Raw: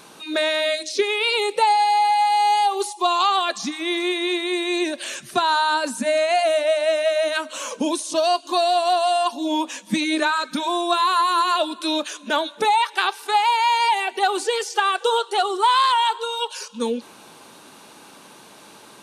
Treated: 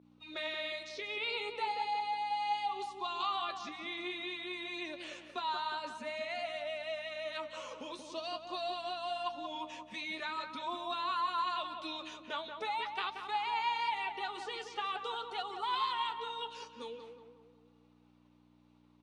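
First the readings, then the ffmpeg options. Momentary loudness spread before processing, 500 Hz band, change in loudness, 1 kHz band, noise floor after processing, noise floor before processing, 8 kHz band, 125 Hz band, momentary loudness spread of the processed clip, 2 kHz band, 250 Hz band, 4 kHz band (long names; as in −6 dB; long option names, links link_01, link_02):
8 LU, −20.0 dB, −17.0 dB, −16.5 dB, −66 dBFS, −46 dBFS, −26.5 dB, can't be measured, 9 LU, −15.5 dB, −22.0 dB, −16.0 dB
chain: -filter_complex "[0:a]bandreject=frequency=1600:width=6.4,agate=range=-33dB:threshold=-35dB:ratio=3:detection=peak,acrossover=split=1100[link_01][link_02];[link_01]acompressor=threshold=-29dB:ratio=6[link_03];[link_03][link_02]amix=inputs=2:normalize=0,flanger=delay=3.5:depth=8.1:regen=51:speed=0.45:shape=sinusoidal,aeval=exprs='val(0)+0.0126*(sin(2*PI*60*n/s)+sin(2*PI*2*60*n/s)/2+sin(2*PI*3*60*n/s)/3+sin(2*PI*4*60*n/s)/4+sin(2*PI*5*60*n/s)/5)':channel_layout=same,highpass=330,lowpass=3600,asplit=2[link_04][link_05];[link_05]adelay=181,lowpass=frequency=1900:poles=1,volume=-6dB,asplit=2[link_06][link_07];[link_07]adelay=181,lowpass=frequency=1900:poles=1,volume=0.51,asplit=2[link_08][link_09];[link_09]adelay=181,lowpass=frequency=1900:poles=1,volume=0.51,asplit=2[link_10][link_11];[link_11]adelay=181,lowpass=frequency=1900:poles=1,volume=0.51,asplit=2[link_12][link_13];[link_13]adelay=181,lowpass=frequency=1900:poles=1,volume=0.51,asplit=2[link_14][link_15];[link_15]adelay=181,lowpass=frequency=1900:poles=1,volume=0.51[link_16];[link_04][link_06][link_08][link_10][link_12][link_14][link_16]amix=inputs=7:normalize=0,volume=-9dB"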